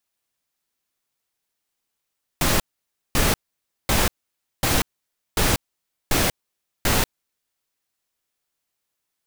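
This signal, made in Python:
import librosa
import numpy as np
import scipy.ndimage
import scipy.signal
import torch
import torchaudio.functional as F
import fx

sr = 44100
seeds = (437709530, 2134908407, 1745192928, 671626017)

y = fx.noise_burst(sr, seeds[0], colour='pink', on_s=0.19, off_s=0.55, bursts=7, level_db=-19.0)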